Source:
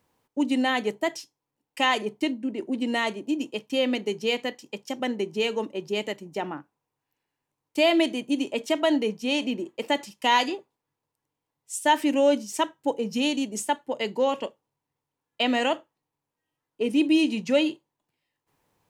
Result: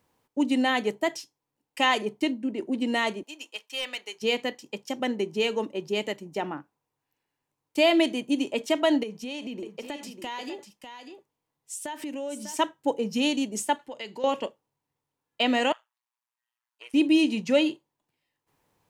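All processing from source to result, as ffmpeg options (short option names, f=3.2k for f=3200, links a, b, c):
-filter_complex "[0:a]asettb=1/sr,asplit=3[a][b][c];[a]atrim=end=3.234[d];[b]atrim=start=3.23:end=4.22,asetpts=PTS-STARTPTS,afade=t=in:d=0.004:c=qsin,afade=t=out:st=0.986:d=0.004:c=qsin,highpass=1.1k,volume=26dB,asoftclip=hard,volume=-26dB[e];[c]atrim=start=4.216[f];[d][e]acrossfade=d=0.004:c1=hsin:c2=qsin[g];[g][f]acrossfade=d=0.004:c1=qsin:c2=hsin,asettb=1/sr,asplit=3[h][i][j];[h]atrim=end=9.034[k];[i]atrim=start=9.03:end=12.57,asetpts=PTS-STARTPTS,afade=t=in:d=0.004:c=qsin,afade=t=out:st=3.536:d=0.004:c=qsin,acompressor=threshold=-32dB:ratio=6:attack=3.2:release=140:knee=1:detection=peak,aecho=1:1:597:0.376,atrim=end_sample=156114[l];[j]atrim=start=12.566[m];[k][l]acrossfade=d=0.004:c1=hsin:c2=qsin[n];[n][m]acrossfade=d=0.004:c1=qsin:c2=hsin,asettb=1/sr,asplit=3[o][p][q];[o]atrim=end=13.794[r];[p]atrim=start=13.79:end=14.24,asetpts=PTS-STARTPTS,afade=t=in:d=0.004:c=qsin,afade=t=out:st=0.446:d=0.004:c=qsin,equalizer=f=3.4k:w=0.35:g=8,acompressor=threshold=-44dB:ratio=2:attack=3.2:release=140:knee=1:detection=peak[s];[q]atrim=start=14.236[t];[r][s]acrossfade=d=0.004:c1=hsin:c2=qsin[u];[u][t]acrossfade=d=0.004:c1=qsin:c2=hsin,asettb=1/sr,asplit=3[v][w][x];[v]atrim=end=15.724[y];[w]atrim=start=15.72:end=16.94,asetpts=PTS-STARTPTS,afade=t=in:d=0.004:c=qsin,afade=t=out:st=1.216:d=0.004:c=qsin,acrossover=split=2800[z][aa];[aa]acompressor=threshold=-50dB:ratio=4:attack=1:release=60[ab];[z][ab]amix=inputs=2:normalize=0,highpass=f=1k:w=0.5412,highpass=f=1k:w=1.3066,tremolo=f=120:d=0.824[ac];[x]atrim=start=16.936[ad];[y][ac]acrossfade=d=0.004:c1=hsin:c2=qsin[ae];[ae][ad]acrossfade=d=0.004:c1=qsin:c2=hsin"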